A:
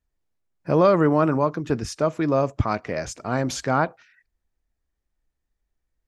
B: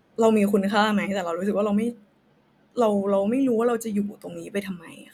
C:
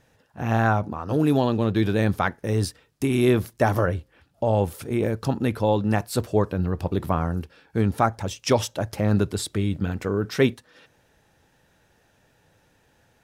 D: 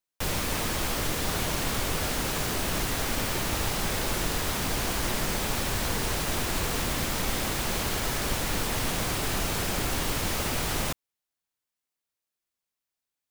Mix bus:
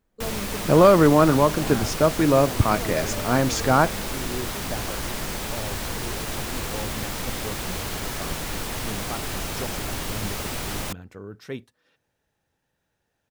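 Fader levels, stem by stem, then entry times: +3.0, -15.5, -14.5, -1.5 dB; 0.00, 0.00, 1.10, 0.00 s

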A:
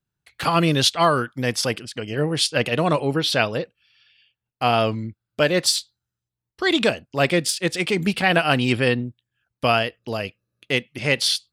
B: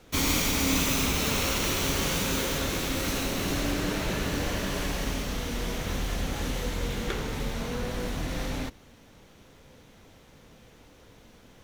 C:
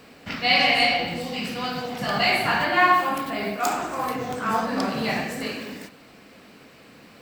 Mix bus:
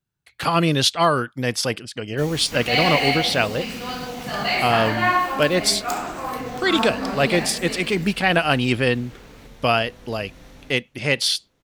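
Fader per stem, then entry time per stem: 0.0, -13.5, -1.5 dB; 0.00, 2.05, 2.25 s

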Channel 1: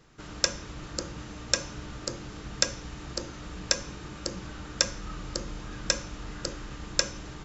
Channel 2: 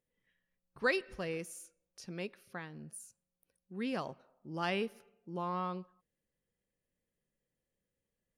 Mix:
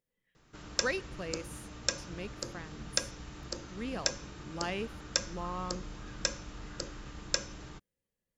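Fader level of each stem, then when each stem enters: -5.5, -2.0 dB; 0.35, 0.00 s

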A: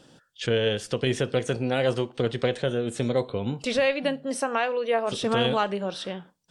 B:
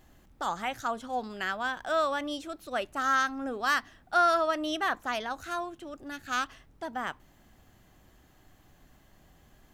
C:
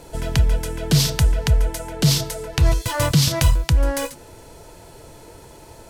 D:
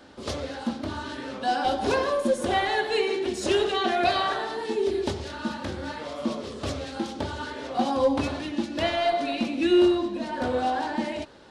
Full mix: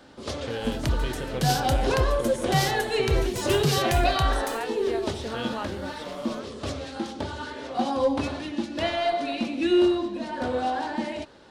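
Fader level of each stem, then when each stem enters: -9.5, -17.5, -9.0, -1.0 dB; 0.00, 0.00, 0.50, 0.00 s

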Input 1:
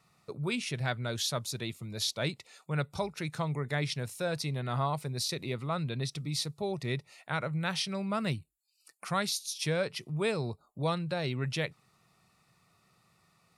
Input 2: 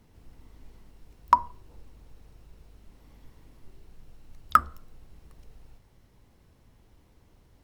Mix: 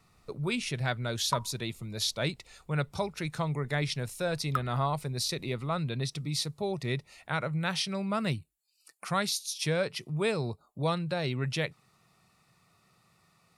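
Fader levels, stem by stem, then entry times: +1.5, -12.5 dB; 0.00, 0.00 s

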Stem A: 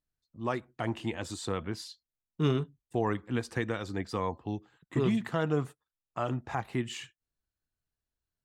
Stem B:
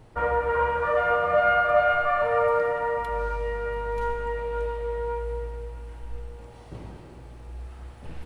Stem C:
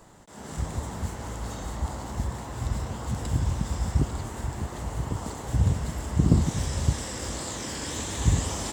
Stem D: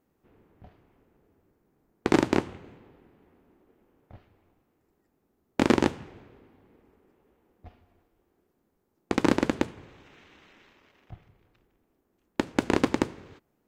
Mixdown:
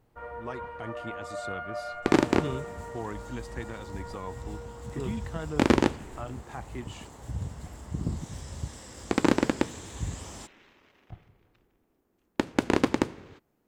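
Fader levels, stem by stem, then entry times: -7.0, -16.0, -11.5, 0.0 dB; 0.00, 0.00, 1.75, 0.00 s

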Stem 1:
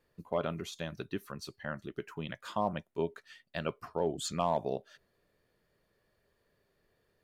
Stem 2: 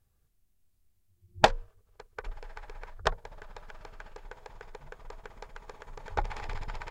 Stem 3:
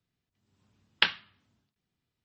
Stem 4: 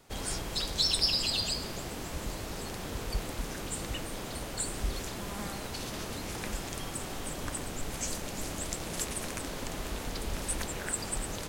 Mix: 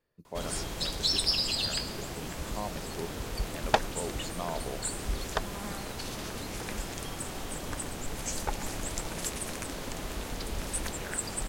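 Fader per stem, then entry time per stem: -6.0, -4.0, -18.0, 0.0 dB; 0.00, 2.30, 0.75, 0.25 s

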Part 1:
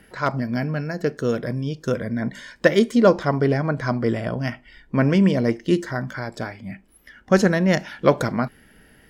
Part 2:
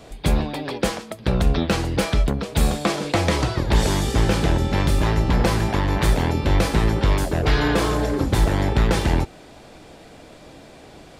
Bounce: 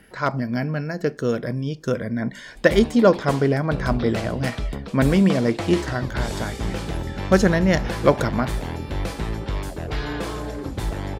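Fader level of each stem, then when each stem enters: 0.0, -8.5 dB; 0.00, 2.45 s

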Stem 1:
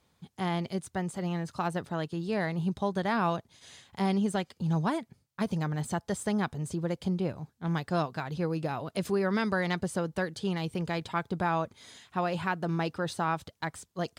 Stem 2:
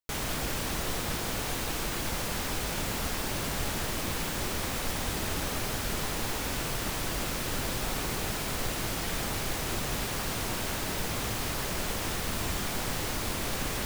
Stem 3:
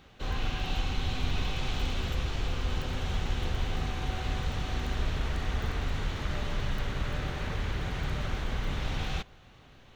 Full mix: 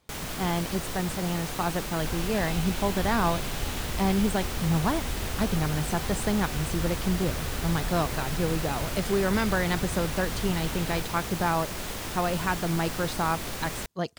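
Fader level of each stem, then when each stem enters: +2.5, -2.5, -3.5 dB; 0.00, 0.00, 1.80 s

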